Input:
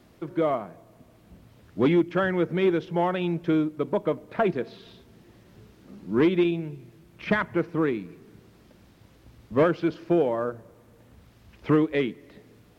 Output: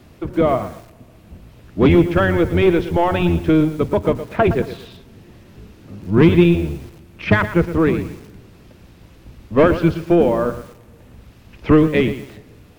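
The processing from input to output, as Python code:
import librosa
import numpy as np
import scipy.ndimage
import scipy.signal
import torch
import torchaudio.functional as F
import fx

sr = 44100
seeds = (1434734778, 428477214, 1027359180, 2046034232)

y = fx.octave_divider(x, sr, octaves=1, level_db=0.0)
y = fx.peak_eq(y, sr, hz=2600.0, db=4.0, octaves=0.23)
y = fx.echo_crushed(y, sr, ms=116, feedback_pct=35, bits=7, wet_db=-12.0)
y = y * 10.0 ** (7.5 / 20.0)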